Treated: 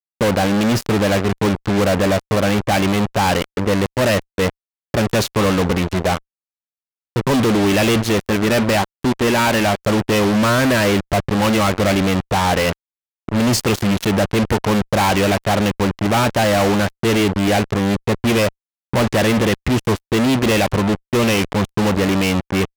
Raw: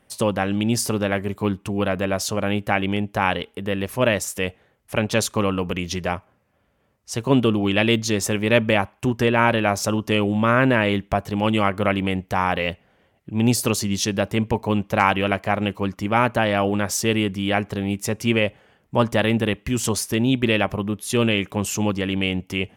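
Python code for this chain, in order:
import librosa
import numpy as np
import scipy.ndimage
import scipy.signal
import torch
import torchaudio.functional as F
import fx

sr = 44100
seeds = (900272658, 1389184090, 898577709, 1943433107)

y = fx.graphic_eq_10(x, sr, hz=(125, 500, 8000), db=(-8, -4, -9), at=(8.18, 9.83))
y = fx.env_lowpass(y, sr, base_hz=700.0, full_db=-11.0)
y = fx.fuzz(y, sr, gain_db=36.0, gate_db=-31.0)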